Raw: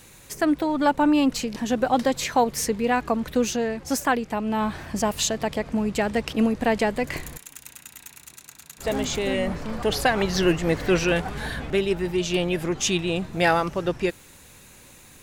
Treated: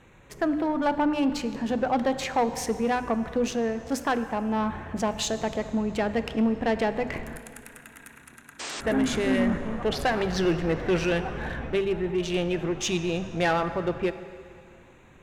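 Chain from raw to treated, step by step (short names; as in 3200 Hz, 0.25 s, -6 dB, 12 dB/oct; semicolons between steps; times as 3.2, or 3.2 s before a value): Wiener smoothing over 9 samples; 7.27–9.58 fifteen-band EQ 250 Hz +10 dB, 1600 Hz +10 dB, 10000 Hz +12 dB; plate-style reverb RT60 2.3 s, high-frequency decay 0.9×, DRR 12 dB; 8.59–8.81 painted sound noise 230–8800 Hz -32 dBFS; high shelf 7800 Hz -10.5 dB; notches 50/100/150/200/250/300 Hz; soft clip -15.5 dBFS, distortion -16 dB; gain -1 dB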